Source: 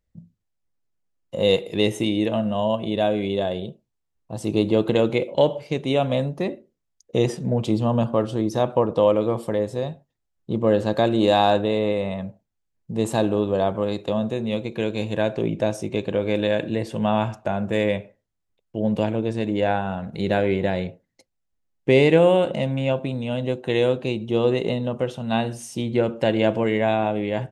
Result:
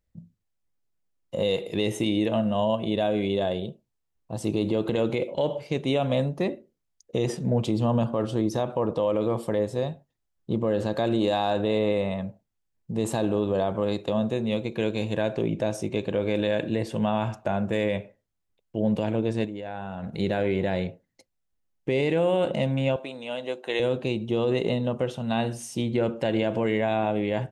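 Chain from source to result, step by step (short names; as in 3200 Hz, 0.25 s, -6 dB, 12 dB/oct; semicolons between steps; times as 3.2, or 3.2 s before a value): 19.45–20.04 level quantiser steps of 17 dB; 22.96–23.8 Bessel high-pass 560 Hz, order 2; limiter -13.5 dBFS, peak gain reduction 9.5 dB; gain -1 dB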